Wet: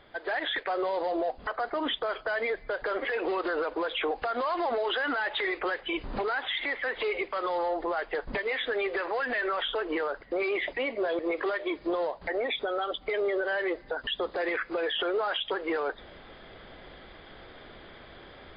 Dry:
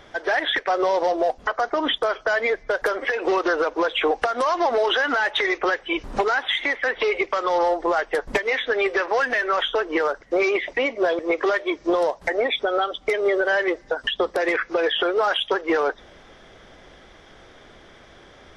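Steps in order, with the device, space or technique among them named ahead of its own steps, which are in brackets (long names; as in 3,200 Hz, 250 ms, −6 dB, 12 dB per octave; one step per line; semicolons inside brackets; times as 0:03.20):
low-bitrate web radio (automatic gain control gain up to 8.5 dB; brickwall limiter −13.5 dBFS, peak gain reduction 10.5 dB; level −8.5 dB; MP3 32 kbit/s 11,025 Hz)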